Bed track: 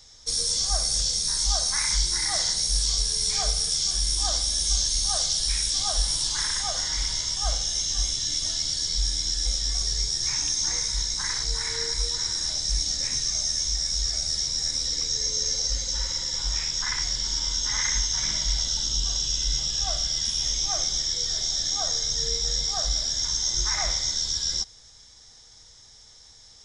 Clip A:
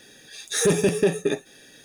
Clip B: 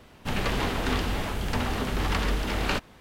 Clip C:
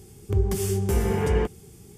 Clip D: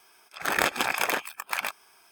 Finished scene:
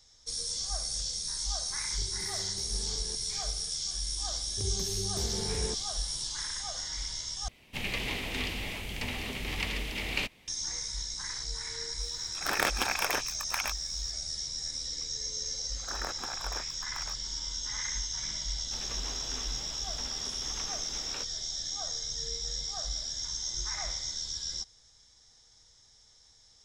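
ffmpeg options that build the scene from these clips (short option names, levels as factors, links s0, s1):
-filter_complex "[3:a]asplit=2[s0][s1];[2:a]asplit=2[s2][s3];[4:a]asplit=2[s4][s5];[0:a]volume=0.335[s6];[s0]acompressor=threshold=0.0251:ratio=6:attack=3.2:release=140:knee=1:detection=peak[s7];[s2]highshelf=f=1800:t=q:w=3:g=6.5[s8];[s5]highshelf=f=1900:t=q:w=1.5:g=-8.5[s9];[s3]highpass=f=330:p=1[s10];[s6]asplit=2[s11][s12];[s11]atrim=end=7.484[s13];[s8]atrim=end=3,asetpts=PTS-STARTPTS,volume=0.316[s14];[s12]atrim=start=10.476[s15];[s7]atrim=end=1.97,asetpts=PTS-STARTPTS,volume=0.282,afade=t=in:d=0.004:c=hsin,afade=t=out:st=1.966:d=0.004:c=hsin,adelay=1690[s16];[s1]atrim=end=1.97,asetpts=PTS-STARTPTS,volume=0.237,afade=t=in:d=0.004:c=hsin,afade=t=out:st=1.966:d=0.004:c=hsin,adelay=4280[s17];[s4]atrim=end=2.11,asetpts=PTS-STARTPTS,volume=0.596,afade=t=in:d=0.004:c=hsin,afade=t=out:st=2.106:d=0.004:c=hsin,adelay=12010[s18];[s9]atrim=end=2.11,asetpts=PTS-STARTPTS,volume=0.2,afade=t=in:d=0.004:c=hsin,afade=t=out:st=2.106:d=0.004:c=hsin,adelay=15430[s19];[s10]atrim=end=3,asetpts=PTS-STARTPTS,volume=0.158,afade=t=in:d=0.004:c=hsin,afade=t=out:st=2.996:d=0.004:c=hsin,adelay=18450[s20];[s13][s14]acrossfade=d=0.004:c1=hsin:c2=hsin[s21];[s21][s15]acrossfade=d=0.004:c1=hsin:c2=hsin[s22];[s22][s16][s17][s18][s19][s20]amix=inputs=6:normalize=0"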